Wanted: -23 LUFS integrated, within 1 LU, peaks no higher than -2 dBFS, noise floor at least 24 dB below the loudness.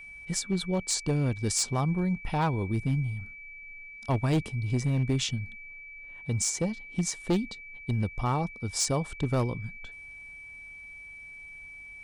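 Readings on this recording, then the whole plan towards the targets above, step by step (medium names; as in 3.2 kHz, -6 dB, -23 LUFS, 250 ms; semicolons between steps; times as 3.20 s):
clipped samples 0.9%; clipping level -20.5 dBFS; steady tone 2.3 kHz; tone level -43 dBFS; loudness -29.5 LUFS; peak level -20.5 dBFS; loudness target -23.0 LUFS
-> clip repair -20.5 dBFS; band-stop 2.3 kHz, Q 30; trim +6.5 dB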